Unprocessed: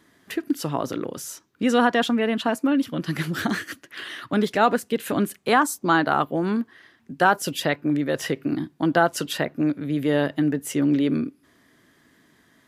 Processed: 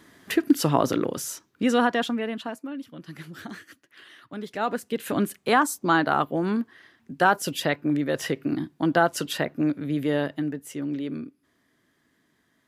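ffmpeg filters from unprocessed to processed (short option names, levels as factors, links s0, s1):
-af "volume=7.5,afade=t=out:st=0.8:d=0.95:silence=0.446684,afade=t=out:st=1.75:d=0.91:silence=0.251189,afade=t=in:st=4.41:d=0.78:silence=0.237137,afade=t=out:st=9.92:d=0.72:silence=0.398107"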